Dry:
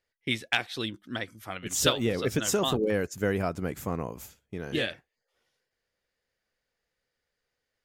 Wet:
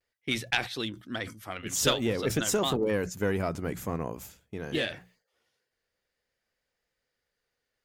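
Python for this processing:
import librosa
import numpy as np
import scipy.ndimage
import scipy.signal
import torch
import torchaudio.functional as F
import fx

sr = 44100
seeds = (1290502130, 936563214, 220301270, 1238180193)

y = fx.diode_clip(x, sr, knee_db=-14.0)
y = fx.vibrato(y, sr, rate_hz=0.49, depth_cents=33.0)
y = fx.hum_notches(y, sr, base_hz=60, count=3)
y = fx.sustainer(y, sr, db_per_s=140.0)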